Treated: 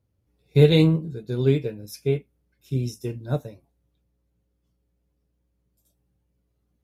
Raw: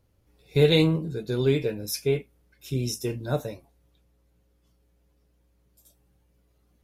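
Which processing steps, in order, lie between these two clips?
HPF 71 Hz; low shelf 300 Hz +9.5 dB; upward expander 1.5:1, over -32 dBFS

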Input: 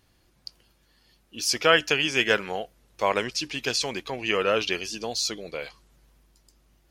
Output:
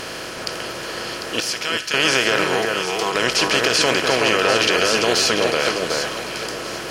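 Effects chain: per-bin compression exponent 0.4; 1.4–1.94 passive tone stack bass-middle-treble 5-5-5; limiter -9 dBFS, peak gain reduction 8.5 dB; 2.44–3.15 fixed phaser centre 380 Hz, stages 8; echo with dull and thin repeats by turns 0.374 s, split 2000 Hz, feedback 54%, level -2.5 dB; gain +3.5 dB

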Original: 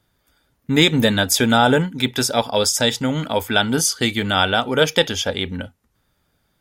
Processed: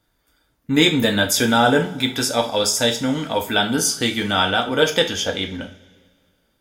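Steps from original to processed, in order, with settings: two-slope reverb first 0.33 s, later 1.9 s, from -21 dB, DRR 3 dB; gain -2.5 dB

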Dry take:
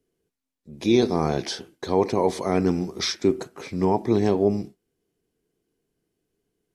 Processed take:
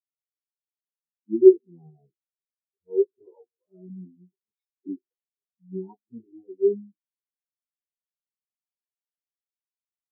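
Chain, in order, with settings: low-pass opened by the level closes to 320 Hz, open at -18.5 dBFS; plain phase-vocoder stretch 1.5×; spectral expander 4:1; gain +8 dB

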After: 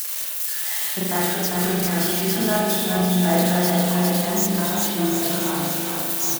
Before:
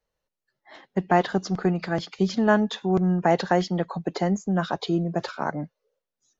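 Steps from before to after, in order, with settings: switching spikes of -16 dBFS; high shelf 4900 Hz +11.5 dB; limiter -11 dBFS, peak gain reduction 7.5 dB; 4.75–5.54 dispersion lows, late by 70 ms, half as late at 1000 Hz; flange 1.8 Hz, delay 8.1 ms, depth 6.5 ms, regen -56%; bouncing-ball echo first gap 0.4 s, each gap 0.85×, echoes 5; spring tank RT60 1.1 s, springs 39 ms, chirp 45 ms, DRR -7 dB

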